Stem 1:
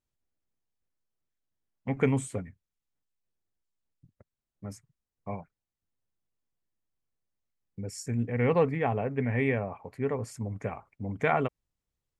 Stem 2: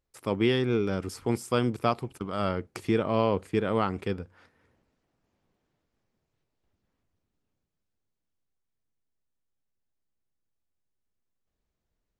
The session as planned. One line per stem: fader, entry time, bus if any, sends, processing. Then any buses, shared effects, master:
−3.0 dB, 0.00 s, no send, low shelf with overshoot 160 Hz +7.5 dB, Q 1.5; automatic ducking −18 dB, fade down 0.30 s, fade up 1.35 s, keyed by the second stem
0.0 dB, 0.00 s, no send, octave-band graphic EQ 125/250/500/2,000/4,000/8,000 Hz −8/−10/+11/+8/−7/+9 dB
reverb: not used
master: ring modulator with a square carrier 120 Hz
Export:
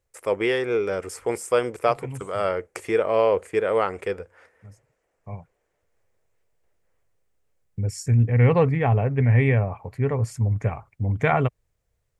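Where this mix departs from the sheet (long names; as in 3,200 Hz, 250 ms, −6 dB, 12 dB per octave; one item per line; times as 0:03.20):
stem 1 −3.0 dB → +5.0 dB
master: missing ring modulator with a square carrier 120 Hz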